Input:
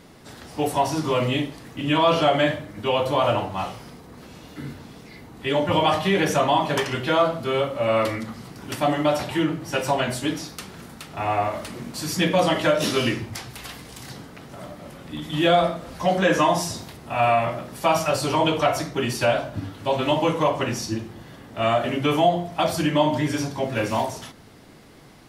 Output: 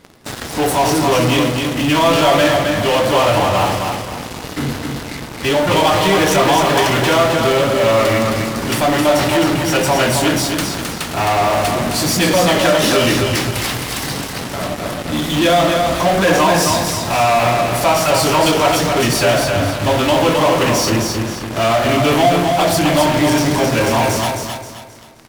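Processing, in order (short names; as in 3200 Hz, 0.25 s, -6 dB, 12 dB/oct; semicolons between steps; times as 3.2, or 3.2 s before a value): bell 170 Hz -2.5 dB; in parallel at -5 dB: fuzz box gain 42 dB, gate -41 dBFS; on the sum: feedback echo 0.264 s, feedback 37%, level -4.5 dB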